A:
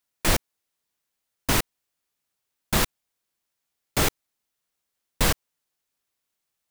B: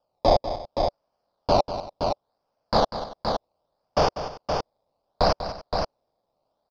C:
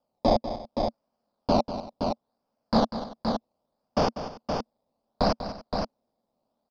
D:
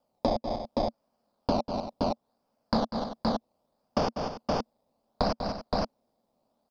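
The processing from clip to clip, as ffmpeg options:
-filter_complex "[0:a]acrusher=samples=21:mix=1:aa=0.000001:lfo=1:lforange=21:lforate=0.69,firequalizer=gain_entry='entry(370,0);entry(580,14);entry(1900,-10);entry(4800,12);entry(8000,-27)':delay=0.05:min_phase=1,asplit=2[a][b];[b]aecho=0:1:194|287|520:0.266|0.106|0.531[c];[a][c]amix=inputs=2:normalize=0,volume=-3dB"
-af "equalizer=f=230:t=o:w=0.59:g=14.5,volume=-4.5dB"
-af "acompressor=threshold=-27dB:ratio=6,volume=3.5dB"

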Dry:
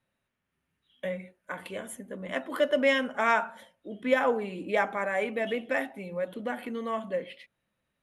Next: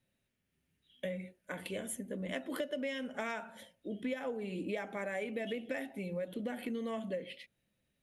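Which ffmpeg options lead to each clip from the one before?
-af "equalizer=f=1.1k:w=1:g=-12,acompressor=threshold=-36dB:ratio=12,volume=2dB"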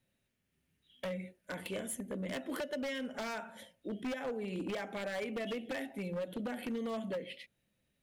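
-af "aeval=exprs='0.0237*(abs(mod(val(0)/0.0237+3,4)-2)-1)':c=same,volume=1dB"

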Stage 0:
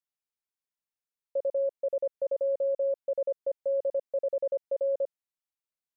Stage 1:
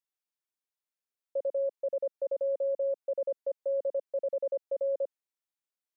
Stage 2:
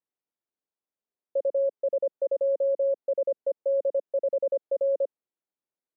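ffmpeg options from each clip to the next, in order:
-af "highpass=f=260:w=0.5412,highpass=f=260:w=1.3066,volume=-2dB"
-af "bandpass=f=340:t=q:w=0.74:csg=0,volume=7dB"

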